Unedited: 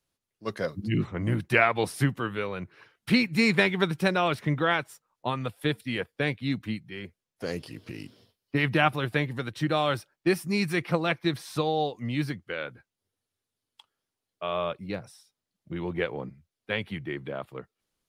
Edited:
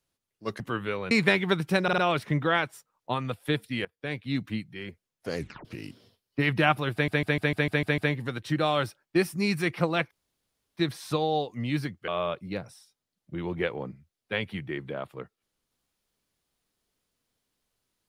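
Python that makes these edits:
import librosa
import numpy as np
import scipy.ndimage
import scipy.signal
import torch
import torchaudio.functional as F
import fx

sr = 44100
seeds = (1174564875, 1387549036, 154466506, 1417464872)

y = fx.edit(x, sr, fx.cut(start_s=0.6, length_s=1.5),
    fx.cut(start_s=2.61, length_s=0.81),
    fx.stutter(start_s=4.14, slice_s=0.05, count=4),
    fx.fade_in_from(start_s=6.01, length_s=0.53, floor_db=-20.5),
    fx.tape_stop(start_s=7.54, length_s=0.27),
    fx.stutter(start_s=9.09, slice_s=0.15, count=8),
    fx.insert_room_tone(at_s=11.22, length_s=0.66),
    fx.cut(start_s=12.53, length_s=1.93), tone=tone)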